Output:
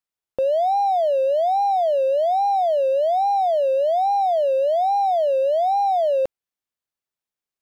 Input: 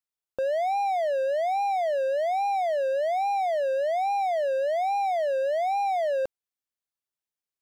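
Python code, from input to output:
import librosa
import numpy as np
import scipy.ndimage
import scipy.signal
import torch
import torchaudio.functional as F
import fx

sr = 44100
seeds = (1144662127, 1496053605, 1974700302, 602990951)

y = fx.high_shelf(x, sr, hz=3700.0, db=-4.5)
y = fx.leveller(y, sr, passes=1)
y = y * librosa.db_to_amplitude(5.5)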